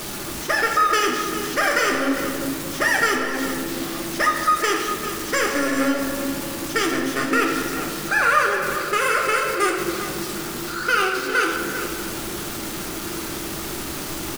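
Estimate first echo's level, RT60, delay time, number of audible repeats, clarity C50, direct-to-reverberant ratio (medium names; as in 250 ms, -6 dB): -11.0 dB, 2.1 s, 399 ms, 1, 2.5 dB, -0.5 dB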